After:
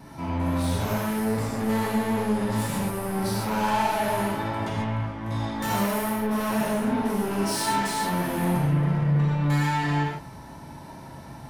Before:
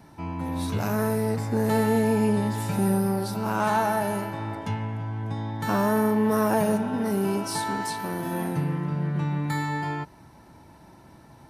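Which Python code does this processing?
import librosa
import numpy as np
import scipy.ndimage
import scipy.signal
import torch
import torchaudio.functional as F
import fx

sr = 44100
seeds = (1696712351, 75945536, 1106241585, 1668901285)

p1 = fx.high_shelf(x, sr, hz=5100.0, db=8.5, at=(5.23, 6.12))
p2 = fx.over_compress(p1, sr, threshold_db=-28.0, ratio=-1.0)
p3 = p1 + (p2 * 10.0 ** (-2.0 / 20.0))
p4 = fx.vibrato(p3, sr, rate_hz=2.5, depth_cents=17.0)
p5 = 10.0 ** (-25.0 / 20.0) * np.tanh(p4 / 10.0 ** (-25.0 / 20.0))
p6 = fx.rev_gated(p5, sr, seeds[0], gate_ms=170, shape='flat', drr_db=-4.0)
y = p6 * 10.0 ** (-3.0 / 20.0)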